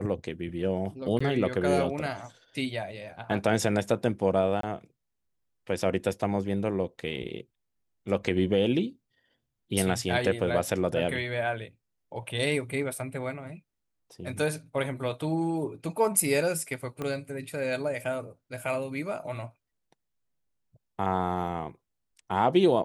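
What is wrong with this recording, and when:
0:01.19–0:01.21: drop-out 15 ms
0:04.61–0:04.63: drop-out 23 ms
0:17.02: click −20 dBFS

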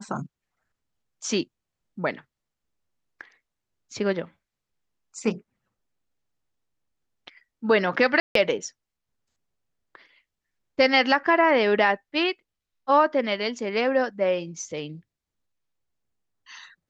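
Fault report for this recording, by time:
0:08.20–0:08.35: drop-out 153 ms

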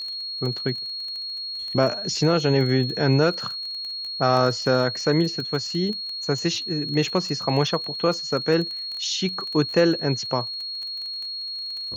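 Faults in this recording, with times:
surface crackle 21 per second −29 dBFS
whistle 4,300 Hz −29 dBFS

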